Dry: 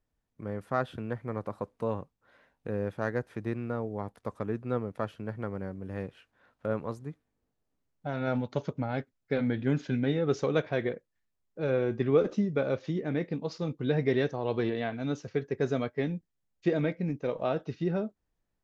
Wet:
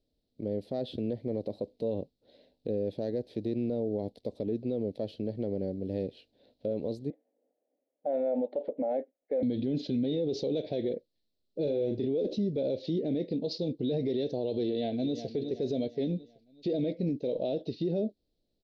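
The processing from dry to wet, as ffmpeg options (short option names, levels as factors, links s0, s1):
-filter_complex "[0:a]asettb=1/sr,asplit=3[s0][s1][s2];[s0]atrim=end=7.104[s3];[s1]atrim=start=7.1:end=9.43,asetpts=PTS-STARTPTS,afade=t=in:d=0.004:c=qsin,afade=t=out:st=2.326:d=0.004:c=qsin,highpass=f=290:w=0.5412,highpass=f=290:w=1.3066,equalizer=f=380:t=q:w=4:g=-7,equalizer=f=540:t=q:w=4:g=9,equalizer=f=770:t=q:w=4:g=7,equalizer=f=1200:t=q:w=4:g=8,equalizer=f=1800:t=q:w=4:g=6,lowpass=f=2000:w=0.5412,lowpass=f=2000:w=1.3066[s4];[s2]atrim=start=9.426[s5];[s3][s4]acrossfade=d=0.004:c1=hsin:c2=qsin[s6];[s6][s5]acrossfade=d=0.004:c1=qsin:c2=hsin,asettb=1/sr,asplit=3[s7][s8][s9];[s7]atrim=end=11.624[s10];[s8]atrim=start=11.62:end=12.06,asetpts=PTS-STARTPTS,afade=t=in:d=0.004:c=qsin,afade=t=out:st=0.436:d=0.004:c=qsin,asplit=2[s11][s12];[s12]adelay=34,volume=0.531[s13];[s11][s13]amix=inputs=2:normalize=0,atrim=end_sample=19404[s14];[s9]atrim=start=12.056[s15];[s10][s14]acrossfade=d=0.004:c1=hsin:c2=qsin[s16];[s16][s15]acrossfade=d=0.004:c1=qsin:c2=hsin,asplit=2[s17][s18];[s18]afade=t=in:st=14.65:d=0.01,afade=t=out:st=15.33:d=0.01,aecho=0:1:370|740|1110|1480:0.211349|0.095107|0.0427982|0.0192592[s19];[s17][s19]amix=inputs=2:normalize=0,firequalizer=gain_entry='entry(150,0);entry(250,8);entry(600,7);entry(1200,-29);entry(2000,-10);entry(4100,14);entry(6500,-7)':delay=0.05:min_phase=1,alimiter=limit=0.0708:level=0:latency=1:release=51"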